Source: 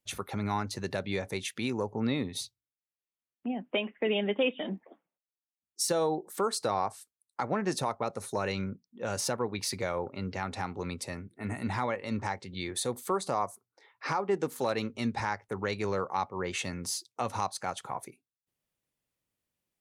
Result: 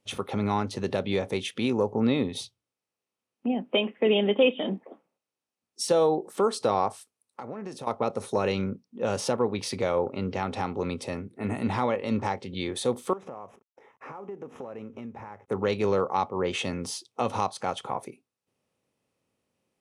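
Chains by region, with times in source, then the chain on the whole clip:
6.89–7.87 s: treble shelf 11 kHz +9 dB + compression 8:1, threshold -40 dBFS
13.13–15.48 s: CVSD coder 64 kbps + boxcar filter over 10 samples + compression 5:1, threshold -45 dBFS
whole clip: spectral levelling over time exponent 0.6; dynamic bell 3.3 kHz, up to +6 dB, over -53 dBFS, Q 5; spectral contrast expander 1.5:1

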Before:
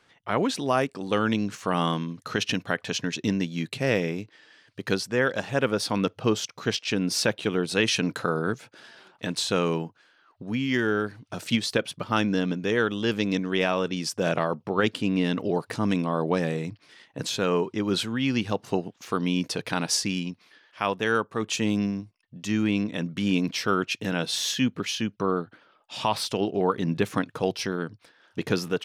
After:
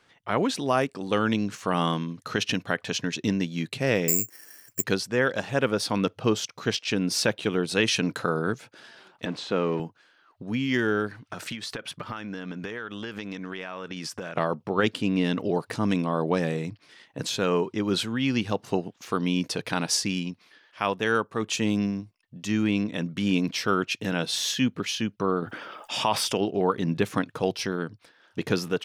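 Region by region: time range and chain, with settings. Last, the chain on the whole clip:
4.08–4.84 s: low-pass 2.6 kHz 24 dB/octave + careless resampling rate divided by 6×, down filtered, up zero stuff
9.25–9.80 s: jump at every zero crossing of -34 dBFS + high-pass 180 Hz + tape spacing loss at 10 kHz 25 dB
11.11–14.37 s: peaking EQ 1.5 kHz +8 dB 1.6 oct + compression 16:1, threshold -30 dBFS
25.42–26.38 s: bass shelf 100 Hz -11 dB + band-stop 4.1 kHz, Q 5.2 + level flattener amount 50%
whole clip: none

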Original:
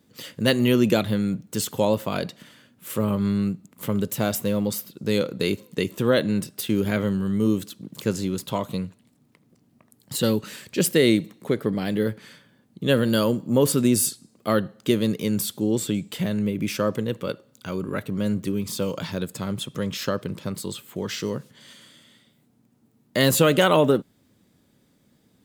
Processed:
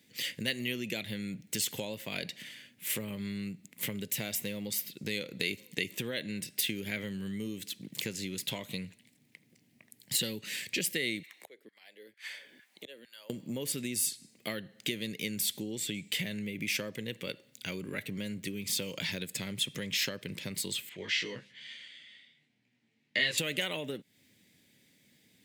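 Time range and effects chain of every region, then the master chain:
11.23–13.30 s: LFO high-pass saw down 2.2 Hz 260–1600 Hz + inverted gate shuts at -25 dBFS, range -28 dB + three bands compressed up and down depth 40%
20.89–23.38 s: low-pass 3.4 kHz + tilt shelf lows -5 dB, about 880 Hz + detune thickener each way 15 cents
whole clip: compression, threshold -28 dBFS; high-pass 87 Hz; resonant high shelf 1.6 kHz +8.5 dB, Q 3; trim -6.5 dB

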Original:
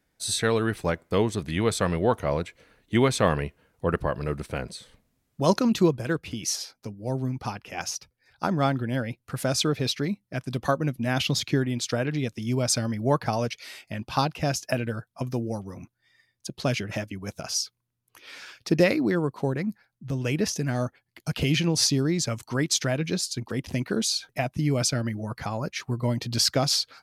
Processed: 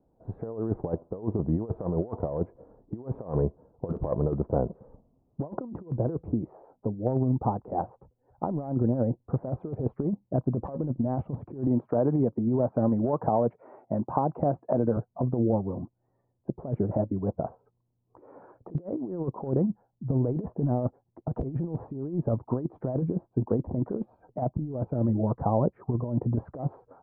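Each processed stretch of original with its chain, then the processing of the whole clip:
11.67–14.97 s: high-pass 130 Hz + peaking EQ 2.3 kHz +6 dB 2.7 oct + compression 10:1, threshold -23 dBFS
whole clip: steep low-pass 950 Hz 36 dB/octave; peaking EQ 450 Hz +3.5 dB 1.9 oct; compressor with a negative ratio -27 dBFS, ratio -0.5; trim +1 dB

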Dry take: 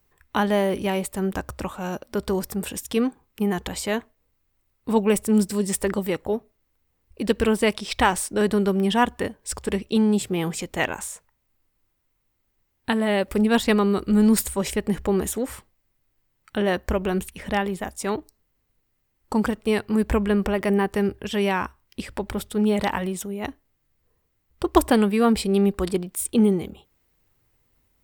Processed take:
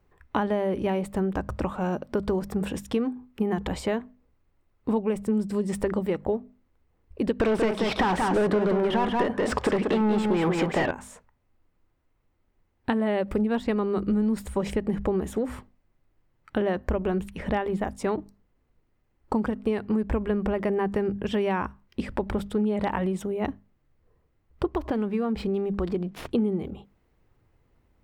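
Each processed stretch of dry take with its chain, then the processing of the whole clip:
7.40–10.91 s: overdrive pedal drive 32 dB, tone 2.9 kHz, clips at -5.5 dBFS + delay 184 ms -5.5 dB
24.67–26.31 s: median filter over 5 samples + compression 2:1, threshold -30 dBFS
whole clip: low-pass 1.1 kHz 6 dB/octave; hum notches 50/100/150/200/250 Hz; compression 6:1, threshold -28 dBFS; trim +5.5 dB

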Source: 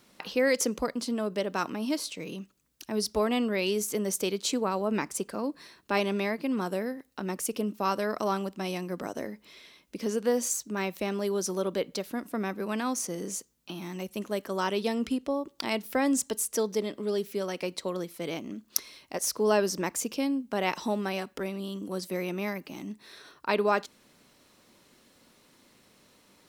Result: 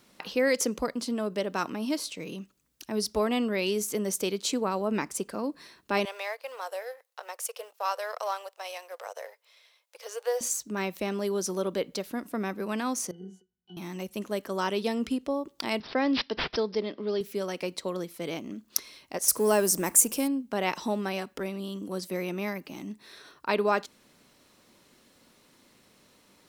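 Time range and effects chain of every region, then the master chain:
6.05–10.41 s: companding laws mixed up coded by A + Chebyshev high-pass 490 Hz, order 5
13.11–13.77 s: treble shelf 4.4 kHz +10.5 dB + pitch-class resonator F#, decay 0.15 s
15.80–17.21 s: high-pass 160 Hz + careless resampling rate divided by 4×, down none, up filtered
19.28–20.28 s: companding laws mixed up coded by mu + resonant high shelf 6.4 kHz +12 dB, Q 1.5
whole clip: none

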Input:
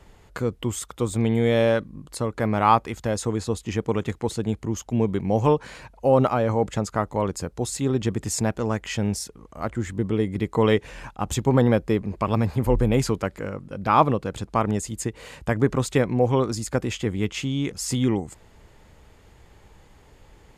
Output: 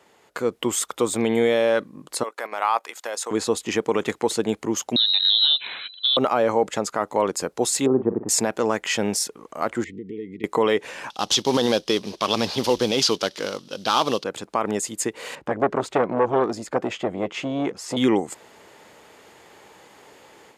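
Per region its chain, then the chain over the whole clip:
2.23–3.31 s: high-pass 680 Hz + treble shelf 7.9 kHz +4.5 dB + level held to a coarse grid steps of 12 dB
4.96–6.17 s: compression 10:1, threshold -22 dBFS + frequency inversion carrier 4 kHz
7.86–8.29 s: low-pass 1 kHz 24 dB/octave + doubling 47 ms -12 dB
9.84–10.44 s: tape spacing loss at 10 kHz 31 dB + compression 12:1, threshold -31 dBFS + brick-wall FIR band-stop 490–1800 Hz
11.10–14.24 s: CVSD coder 64 kbps + high-order bell 4.2 kHz +15.5 dB 1.3 oct
15.35–17.97 s: low-pass 1.2 kHz 6 dB/octave + transformer saturation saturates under 910 Hz
whole clip: high-pass 330 Hz 12 dB/octave; level rider gain up to 8.5 dB; peak limiter -9 dBFS

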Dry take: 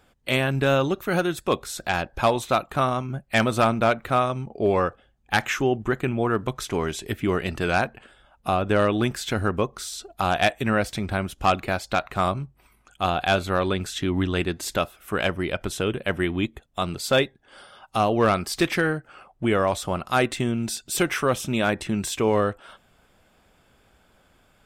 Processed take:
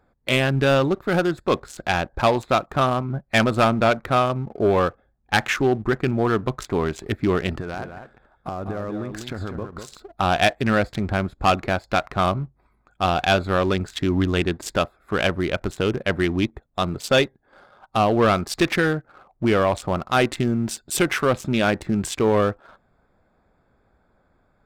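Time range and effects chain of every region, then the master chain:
7.54–9.97 s: compression 20:1, threshold -28 dBFS + delay 198 ms -7 dB
whole clip: local Wiener filter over 15 samples; peaking EQ 3.5 kHz +2.5 dB 1.5 oct; waveshaping leveller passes 1

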